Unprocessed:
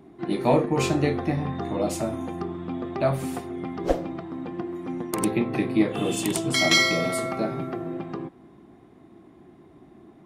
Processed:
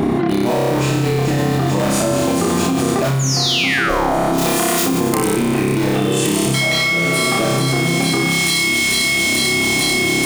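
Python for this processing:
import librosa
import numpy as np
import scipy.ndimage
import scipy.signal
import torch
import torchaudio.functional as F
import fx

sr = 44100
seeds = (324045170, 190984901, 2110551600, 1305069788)

p1 = (np.mod(10.0 ** (17.5 / 20.0) * x + 1.0, 2.0) - 1.0) / 10.0 ** (17.5 / 20.0)
p2 = x + F.gain(torch.from_numpy(p1), -8.5).numpy()
p3 = fx.high_shelf(p2, sr, hz=10000.0, db=-11.0, at=(6.57, 7.02))
p4 = p3 + fx.echo_wet_highpass(p3, sr, ms=442, feedback_pct=78, hz=3200.0, wet_db=-9.0, dry=0)
p5 = fx.rider(p4, sr, range_db=10, speed_s=0.5)
p6 = fx.spec_paint(p5, sr, seeds[0], shape='fall', start_s=3.19, length_s=0.96, low_hz=600.0, high_hz=7200.0, level_db=-23.0)
p7 = fx.tilt_eq(p6, sr, slope=3.5, at=(4.38, 4.83))
p8 = fx.room_flutter(p7, sr, wall_m=5.1, rt60_s=1.2)
p9 = fx.env_flatten(p8, sr, amount_pct=100)
y = F.gain(torch.from_numpy(p9), -4.0).numpy()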